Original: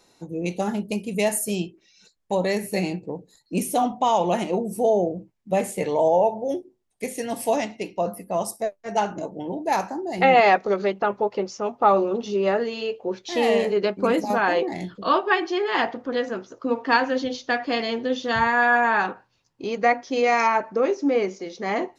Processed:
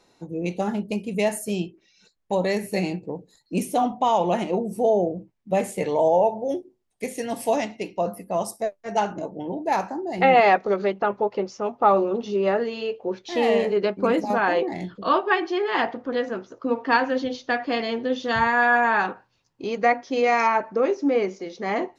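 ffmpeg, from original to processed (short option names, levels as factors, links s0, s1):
-af "asetnsamples=n=441:p=0,asendcmd='2.33 lowpass f 7200;3.65 lowpass f 4200;5.55 lowpass f 8300;9.13 lowpass f 3800;18.2 lowpass f 8100;19.86 lowpass f 4900',lowpass=f=3900:p=1"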